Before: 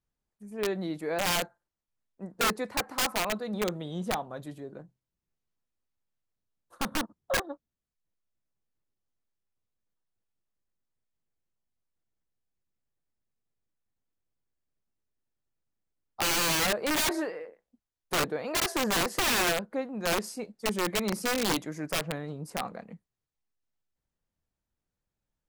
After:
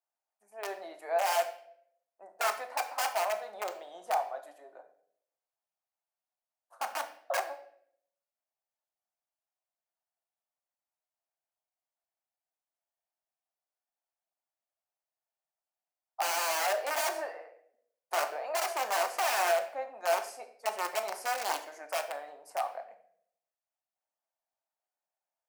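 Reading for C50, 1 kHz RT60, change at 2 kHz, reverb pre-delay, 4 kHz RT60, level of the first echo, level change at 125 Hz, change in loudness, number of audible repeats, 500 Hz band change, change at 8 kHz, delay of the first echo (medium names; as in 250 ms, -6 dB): 11.5 dB, 0.55 s, -4.0 dB, 3 ms, 0.50 s, no echo, under -40 dB, -3.5 dB, no echo, -1.0 dB, -5.5 dB, no echo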